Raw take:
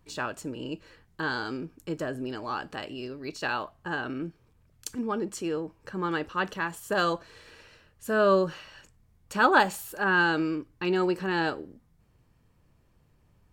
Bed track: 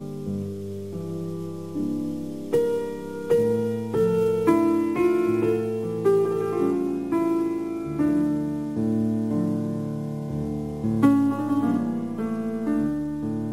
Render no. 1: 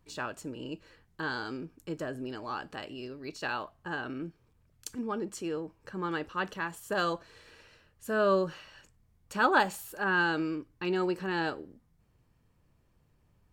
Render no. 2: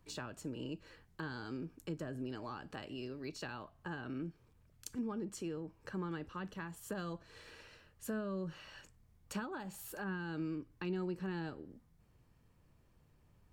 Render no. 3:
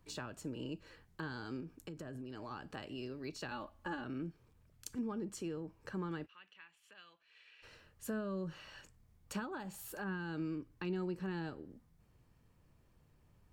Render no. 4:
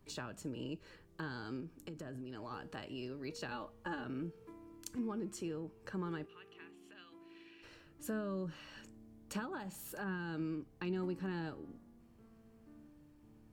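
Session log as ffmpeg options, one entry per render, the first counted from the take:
-af "volume=-4dB"
-filter_complex "[0:a]alimiter=limit=-20.5dB:level=0:latency=1:release=229,acrossover=split=240[a][b];[b]acompressor=threshold=-43dB:ratio=10[c];[a][c]amix=inputs=2:normalize=0"
-filter_complex "[0:a]asettb=1/sr,asplit=3[a][b][c];[a]atrim=end=1.604[d];[b]atrim=start=1.6:end=2.51,asetpts=PTS-STARTPTS,afade=t=in:d=0.004:c=qsin,afade=t=out:st=0.906:d=0.004:c=qsin,acompressor=threshold=-41dB:ratio=10:attack=3.2:release=140:knee=1:detection=peak[e];[c]atrim=start=2.506[f];[d][e]acrossfade=d=0.004:c1=hsin:c2=qsin[g];[g][f]acrossfade=d=0.004:c1=qsin:c2=hsin,asettb=1/sr,asplit=3[h][i][j];[h]atrim=end=3.514[k];[i]atrim=start=3.51:end=4.04,asetpts=PTS-STARTPTS,afade=t=in:d=0.004:c=qsin,afade=t=out:st=0.526:d=0.004:c=qsin,aecho=1:1:3.5:0.93,atrim=end_sample=23373[l];[j]atrim=start=4.036[m];[k][l]acrossfade=d=0.004:c1=hsin:c2=qsin[n];[n][m]acrossfade=d=0.004:c1=qsin:c2=hsin,asplit=3[o][p][q];[o]afade=t=out:st=6.25:d=0.02[r];[p]bandpass=f=2.6k:t=q:w=3.1,afade=t=in:st=6.25:d=0.02,afade=t=out:st=7.62:d=0.02[s];[q]afade=t=in:st=7.62:d=0.02[t];[r][s][t]amix=inputs=3:normalize=0"
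-filter_complex "[1:a]volume=-35.5dB[a];[0:a][a]amix=inputs=2:normalize=0"

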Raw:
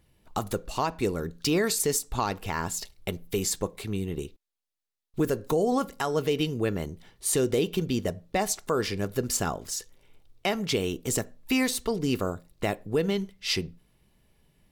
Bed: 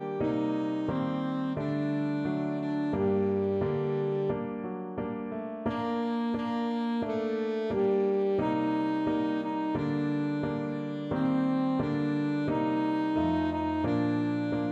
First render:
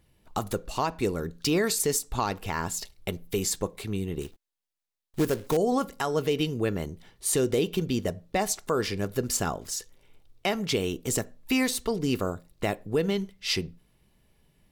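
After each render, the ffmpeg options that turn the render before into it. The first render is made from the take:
-filter_complex "[0:a]asettb=1/sr,asplit=3[a][b][c];[a]atrim=end=4.214[d];[b]atrim=start=4.21:end=5.57,asetpts=PTS-STARTPTS,afade=t=in:d=0.004:c=qsin,afade=t=out:st=1.356:d=0.004:c=qsin,acrusher=bits=3:mode=log:mix=0:aa=0.000001[e];[c]atrim=start=5.566[f];[d][e]acrossfade=d=0.004:c1=hsin:c2=qsin[g];[g][f]acrossfade=d=0.004:c1=qsin:c2=hsin"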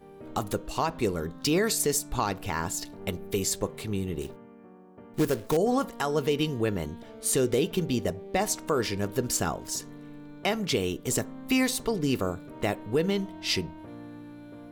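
-filter_complex "[1:a]volume=-15.5dB[a];[0:a][a]amix=inputs=2:normalize=0"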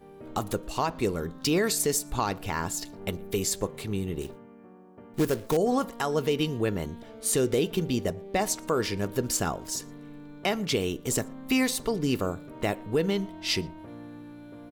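-filter_complex "[0:a]asplit=2[a][b];[b]adelay=116.6,volume=-28dB,highshelf=f=4k:g=-2.62[c];[a][c]amix=inputs=2:normalize=0"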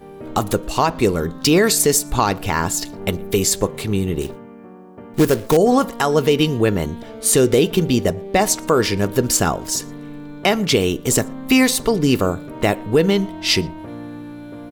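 -af "volume=10.5dB"

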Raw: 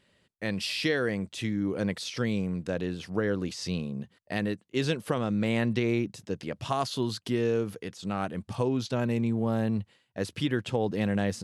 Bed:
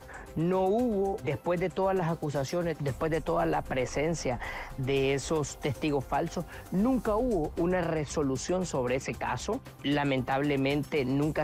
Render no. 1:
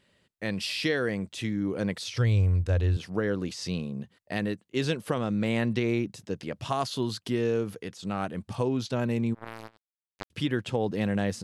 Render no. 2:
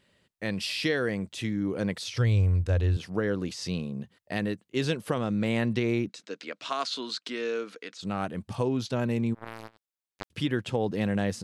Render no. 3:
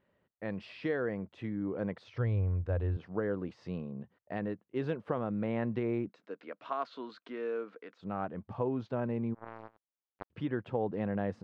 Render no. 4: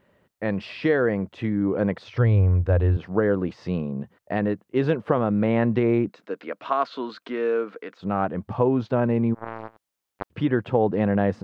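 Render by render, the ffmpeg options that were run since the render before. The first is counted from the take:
-filter_complex "[0:a]asettb=1/sr,asplit=3[a][b][c];[a]atrim=end=2.074[d];[b]atrim=start=2.07:end=2.97,asetpts=PTS-STARTPTS,afade=t=in:d=0.004:c=qsin,afade=t=out:st=0.896:d=0.004:c=qsin,lowshelf=f=130:t=q:w=3:g=12.5[e];[c]atrim=start=2.966[f];[d][e]acrossfade=d=0.004:c1=hsin:c2=qsin[g];[g][f]acrossfade=d=0.004:c1=qsin:c2=hsin,asplit=3[h][i][j];[h]afade=t=out:st=9.33:d=0.02[k];[i]acrusher=bits=2:mix=0:aa=0.5,afade=t=in:st=9.33:d=0.02,afade=t=out:st=10.3:d=0.02[l];[j]afade=t=in:st=10.3:d=0.02[m];[k][l][m]amix=inputs=3:normalize=0"
-filter_complex "[0:a]asettb=1/sr,asplit=3[a][b][c];[a]atrim=end=6.094[d];[b]atrim=start=6.09:end=8.01,asetpts=PTS-STARTPTS,afade=t=in:d=0.004:c=qsin,afade=t=out:st=1.916:d=0.004:c=qsin,highpass=f=290:w=0.5412,highpass=f=290:w=1.3066,equalizer=f=370:t=q:w=4:g=-8,equalizer=f=570:t=q:w=4:g=-3,equalizer=f=820:t=q:w=4:g=-7,equalizer=f=1.4k:t=q:w=4:g=6,equalizer=f=2.3k:t=q:w=4:g=5,equalizer=f=4k:t=q:w=4:g=6,lowpass=f=8.1k:w=0.5412,lowpass=f=8.1k:w=1.3066[e];[c]atrim=start=8.006[f];[d][e]acrossfade=d=0.004:c1=hsin:c2=qsin[g];[g][f]acrossfade=d=0.004:c1=qsin:c2=hsin"
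-af "lowpass=1.1k,lowshelf=f=470:g=-8"
-af "volume=12dB"

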